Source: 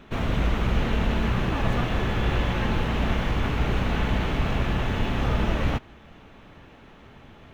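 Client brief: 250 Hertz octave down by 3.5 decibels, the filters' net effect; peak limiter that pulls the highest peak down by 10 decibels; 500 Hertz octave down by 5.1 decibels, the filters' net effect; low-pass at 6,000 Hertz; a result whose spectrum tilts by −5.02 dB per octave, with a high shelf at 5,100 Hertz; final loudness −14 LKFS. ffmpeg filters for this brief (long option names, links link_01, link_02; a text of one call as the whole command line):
ffmpeg -i in.wav -af "lowpass=6000,equalizer=frequency=250:width_type=o:gain=-3.5,equalizer=frequency=500:width_type=o:gain=-5.5,highshelf=frequency=5100:gain=-5.5,volume=18dB,alimiter=limit=-3.5dB:level=0:latency=1" out.wav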